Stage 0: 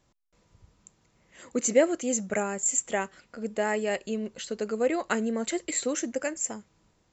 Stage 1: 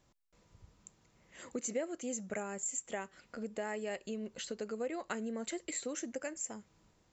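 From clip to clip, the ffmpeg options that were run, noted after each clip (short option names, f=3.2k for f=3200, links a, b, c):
-af "acompressor=threshold=-38dB:ratio=2.5,volume=-2dB"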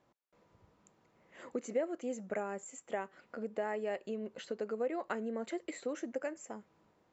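-af "bandpass=f=640:t=q:w=0.51:csg=0,volume=3.5dB"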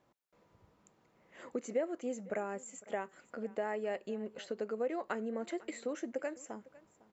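-af "aecho=1:1:504:0.0891"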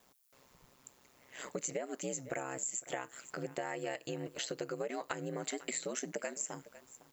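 -af "aeval=exprs='val(0)*sin(2*PI*65*n/s)':c=same,crystalizer=i=7:c=0,acompressor=threshold=-37dB:ratio=6,volume=3dB"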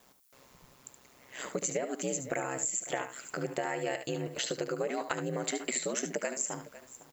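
-af "aecho=1:1:73:0.335,volume=5dB"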